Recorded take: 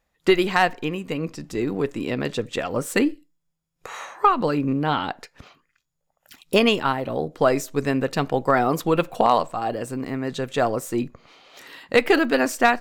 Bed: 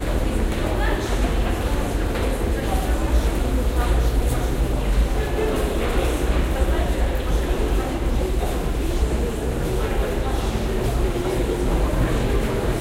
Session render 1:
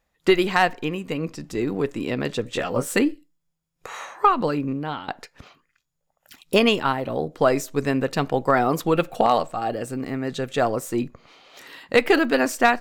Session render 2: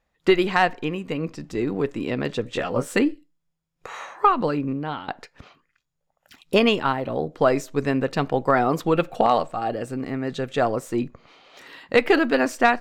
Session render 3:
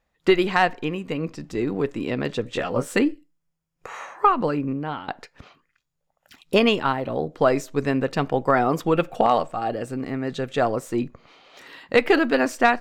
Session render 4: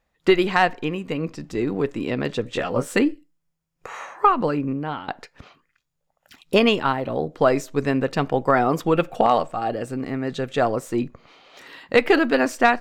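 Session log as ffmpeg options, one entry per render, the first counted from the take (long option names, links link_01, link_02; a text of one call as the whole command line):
ffmpeg -i in.wav -filter_complex "[0:a]asettb=1/sr,asplit=3[link_01][link_02][link_03];[link_01]atrim=end=2.444[link_04];[link_02]atrim=start=2.44:end=2.96,asetpts=PTS-STARTPTS,afade=type=in:duration=0.004:curve=qsin,afade=type=out:start_time=0.516:duration=0.004:curve=qsin,asplit=2[link_05][link_06];[link_06]adelay=16,volume=-4.5dB[link_07];[link_05][link_07]amix=inputs=2:normalize=0,atrim=end_sample=22932[link_08];[link_03]atrim=start=2.956[link_09];[link_04][link_08]acrossfade=duration=0.004:curve1=hsin:curve2=qsin[link_10];[link_10][link_09]acrossfade=duration=0.004:curve1=qsin:curve2=hsin,asettb=1/sr,asplit=3[link_11][link_12][link_13];[link_11]atrim=end=8.934[link_14];[link_12]atrim=start=8.93:end=10.61,asetpts=PTS-STARTPTS,afade=type=in:duration=0.004:curve=qsin,afade=type=out:start_time=1.676:duration=0.004:curve=qsin,asuperstop=centerf=1000:order=4:qfactor=7.4[link_15];[link_13]atrim=start=10.606[link_16];[link_14][link_15]acrossfade=duration=0.004:curve1=hsin:curve2=qsin[link_17];[link_17][link_16]acrossfade=duration=0.004:curve1=qsin:curve2=hsin,asplit=2[link_18][link_19];[link_18]atrim=end=5.08,asetpts=PTS-STARTPTS,afade=type=out:start_time=4.38:duration=0.7:silence=0.251189[link_20];[link_19]atrim=start=5.08,asetpts=PTS-STARTPTS,afade=type=in:duration=0.004:curve=hsin:silence=0.251189[link_21];[link_20][link_21]concat=n=2:v=0:a=1" out.wav
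ffmpeg -i in.wav -af "highshelf=frequency=7500:gain=-11.5" out.wav
ffmpeg -i in.wav -filter_complex "[0:a]asettb=1/sr,asplit=3[link_01][link_02][link_03];[link_01]atrim=end=3.084[link_04];[link_02]atrim=start=3.08:end=5.08,asetpts=PTS-STARTPTS,afade=type=in:duration=0.004:curve=qsin,afade=type=out:start_time=1.996:duration=0.004:curve=qsin,equalizer=frequency=3800:width=3.2:gain=-6[link_05];[link_03]atrim=start=5.076[link_06];[link_04][link_05]acrossfade=duration=0.004:curve1=hsin:curve2=qsin[link_07];[link_07][link_06]acrossfade=duration=0.004:curve1=qsin:curve2=hsin,asettb=1/sr,asplit=3[link_08][link_09][link_10];[link_08]atrim=end=8.144[link_11];[link_09]atrim=start=8.14:end=9.56,asetpts=PTS-STARTPTS,afade=type=in:duration=0.004:curve=qsin,afade=type=out:start_time=1.416:duration=0.004:curve=qsin,bandreject=frequency=4100:width=10[link_12];[link_10]atrim=start=9.556[link_13];[link_11][link_12]acrossfade=duration=0.004:curve1=hsin:curve2=qsin[link_14];[link_14][link_13]acrossfade=duration=0.004:curve1=qsin:curve2=hsin" out.wav
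ffmpeg -i in.wav -af "volume=1dB" out.wav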